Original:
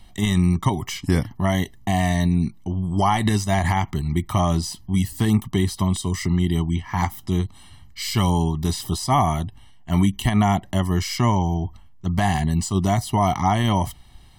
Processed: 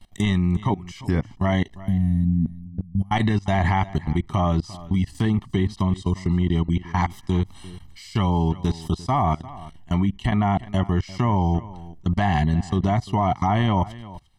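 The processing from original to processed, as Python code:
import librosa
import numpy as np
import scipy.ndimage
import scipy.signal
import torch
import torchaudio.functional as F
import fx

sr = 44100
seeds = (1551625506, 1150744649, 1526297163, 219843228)

y = fx.spec_box(x, sr, start_s=1.79, length_s=1.33, low_hz=260.0, high_hz=9600.0, gain_db=-27)
y = fx.env_lowpass_down(y, sr, base_hz=2400.0, full_db=-14.5)
y = fx.level_steps(y, sr, step_db=23)
y = y + 10.0 ** (-18.0 / 20.0) * np.pad(y, (int(348 * sr / 1000.0), 0))[:len(y)]
y = F.gain(torch.from_numpy(y), 3.5).numpy()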